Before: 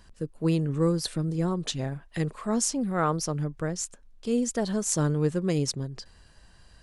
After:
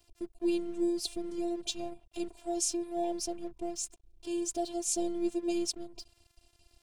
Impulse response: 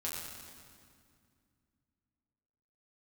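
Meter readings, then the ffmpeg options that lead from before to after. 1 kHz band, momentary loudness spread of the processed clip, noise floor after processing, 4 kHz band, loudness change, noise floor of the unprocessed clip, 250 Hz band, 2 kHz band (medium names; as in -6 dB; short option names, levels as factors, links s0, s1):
-7.0 dB, 10 LU, -70 dBFS, -3.5 dB, -6.0 dB, -56 dBFS, -5.5 dB, -13.0 dB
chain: -af "afftfilt=real='hypot(re,im)*cos(PI*b)':imag='0':win_size=512:overlap=0.75,afftfilt=real='re*(1-between(b*sr/4096,1000,2200))':imag='im*(1-between(b*sr/4096,1000,2200))':win_size=4096:overlap=0.75,aeval=exprs='sgn(val(0))*max(abs(val(0))-0.00168,0)':c=same"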